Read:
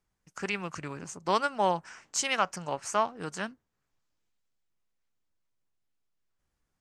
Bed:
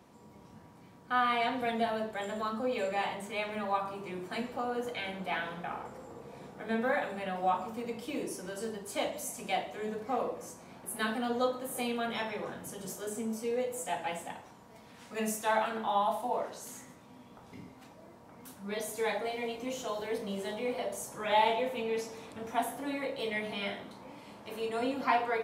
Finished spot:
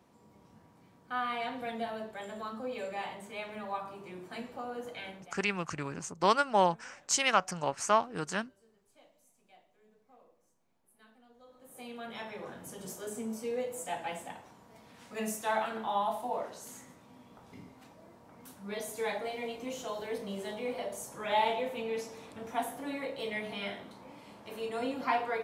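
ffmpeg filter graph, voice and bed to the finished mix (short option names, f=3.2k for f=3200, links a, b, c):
-filter_complex "[0:a]adelay=4950,volume=1dB[a];[1:a]volume=21.5dB,afade=t=out:st=5.08:d=0.27:silence=0.0668344,afade=t=in:st=11.46:d=1.35:silence=0.0446684[b];[a][b]amix=inputs=2:normalize=0"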